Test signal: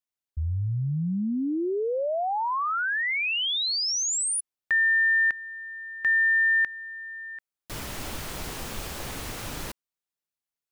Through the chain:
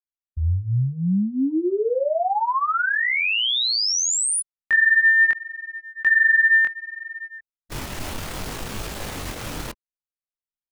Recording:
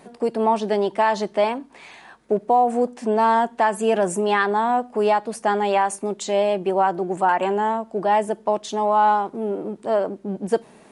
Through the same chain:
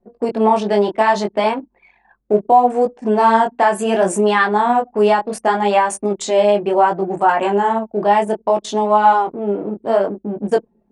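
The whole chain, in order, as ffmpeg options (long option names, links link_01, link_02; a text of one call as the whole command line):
ffmpeg -i in.wav -af "flanger=delay=18.5:depth=6.1:speed=0.68,anlmdn=0.631,volume=8dB" out.wav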